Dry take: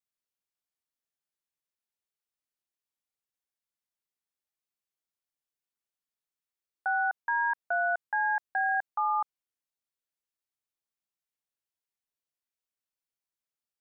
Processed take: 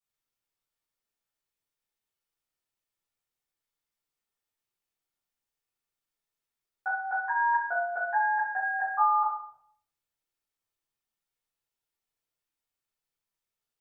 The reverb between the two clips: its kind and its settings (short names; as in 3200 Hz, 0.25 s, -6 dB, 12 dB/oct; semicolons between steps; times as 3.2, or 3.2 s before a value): shoebox room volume 130 m³, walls mixed, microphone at 3.4 m; gain -8 dB